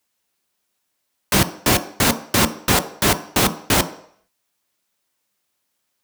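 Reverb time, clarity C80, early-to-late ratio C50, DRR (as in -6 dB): 0.60 s, 17.5 dB, 15.0 dB, 9.0 dB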